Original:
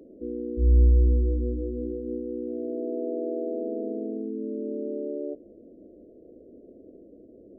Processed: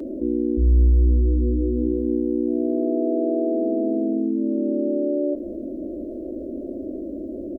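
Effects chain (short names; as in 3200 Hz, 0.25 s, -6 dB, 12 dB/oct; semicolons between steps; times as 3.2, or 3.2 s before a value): comb 3.3 ms, depth 95%; fast leveller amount 50%; gain -2.5 dB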